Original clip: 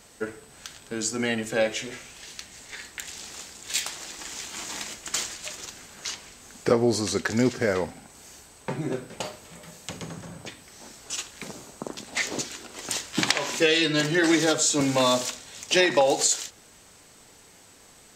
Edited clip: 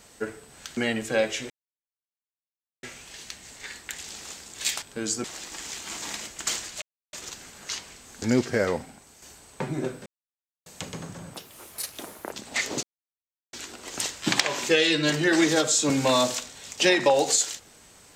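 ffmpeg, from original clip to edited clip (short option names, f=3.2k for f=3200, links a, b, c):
-filter_complex "[0:a]asplit=13[a][b][c][d][e][f][g][h][i][j][k][l][m];[a]atrim=end=0.772[n];[b]atrim=start=1.188:end=1.92,asetpts=PTS-STARTPTS,afade=t=out:st=0.728:d=0.004:c=hsin,apad=pad_dur=1.33[o];[c]atrim=start=1.92:end=3.912,asetpts=PTS-STARTPTS,afade=t=in:d=0.004:c=hsin[p];[d]atrim=start=0.768:end=1.192[q];[e]atrim=start=3.908:end=5.49,asetpts=PTS-STARTPTS,afade=t=out:st=1.578:d=0.004:c=hsin,apad=pad_dur=0.31[r];[f]atrim=start=5.49:end=6.582,asetpts=PTS-STARTPTS,afade=t=in:d=0.004:c=hsin[s];[g]atrim=start=7.298:end=8.3,asetpts=PTS-STARTPTS,afade=t=out:st=0.582:d=0.42:silence=0.446684[t];[h]atrim=start=8.3:end=9.14,asetpts=PTS-STARTPTS,afade=t=in:d=0.004:c=hsin:silence=0.446684,afade=t=out:st=0.836:d=0.004:c=hsin[u];[i]atrim=start=9.14:end=9.74,asetpts=PTS-STARTPTS,volume=0[v];[j]atrim=start=9.74:end=10.424,asetpts=PTS-STARTPTS,afade=t=in:d=0.004:c=hsin[w];[k]atrim=start=10.42:end=11.93,asetpts=PTS-STARTPTS,asetrate=67914,aresample=44100[x];[l]atrim=start=11.926:end=12.44,asetpts=PTS-STARTPTS,afade=t=out:st=0.51:d=0.004:c=hsin,apad=pad_dur=0.7[y];[m]atrim=start=12.44,asetpts=PTS-STARTPTS,afade=t=in:d=0.004:c=hsin[z];[o][p]concat=n=2:v=0:a=1[aa];[n][aa]acrossfade=d=0.004:c1=hsin:c2=hsin[ab];[ab][q]acrossfade=d=0.004:c1=hsin:c2=hsin[ac];[r][s]concat=n=2:v=0:a=1[ad];[ac][ad]acrossfade=d=0.004:c1=hsin:c2=hsin[ae];[t][u][v][w]concat=n=4:v=0:a=1[af];[ae][af]acrossfade=d=0.004:c1=hsin:c2=hsin[ag];[ag][x]acrossfade=d=0.004:c1=hsin:c2=hsin[ah];[y][z]concat=n=2:v=0:a=1[ai];[ah][ai]acrossfade=d=0.004:c1=hsin:c2=hsin"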